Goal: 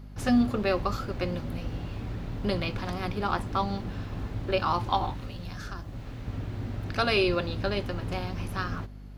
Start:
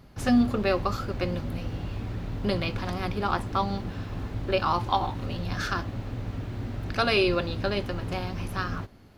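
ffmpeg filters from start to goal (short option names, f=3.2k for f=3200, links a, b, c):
-filter_complex "[0:a]asettb=1/sr,asplit=3[a][b][c];[a]atrim=end=5.124[d];[b]atrim=start=5.12:end=6.28,asetpts=PTS-STARTPTS,afade=t=in:d=0.004:c=qsin,afade=t=out:st=1.156:d=0.004:c=qsin,acrossover=split=120|1200|5800[e][f][g][h];[e]acompressor=threshold=-36dB:ratio=4[i];[f]acompressor=threshold=-41dB:ratio=4[j];[g]acompressor=threshold=-47dB:ratio=4[k];[h]acompressor=threshold=-52dB:ratio=4[l];[i][j][k][l]amix=inputs=4:normalize=0[m];[c]atrim=start=6.276[n];[d][m]acrossfade=d=0.004:c1=hsin:c2=qsin[o];[o][n]acrossfade=d=0.004:c1=qsin:c2=hsin,aeval=exprs='val(0)+0.00891*(sin(2*PI*50*n/s)+sin(2*PI*2*50*n/s)/2+sin(2*PI*3*50*n/s)/3+sin(2*PI*4*50*n/s)/4+sin(2*PI*5*50*n/s)/5)':c=same,volume=-1.5dB"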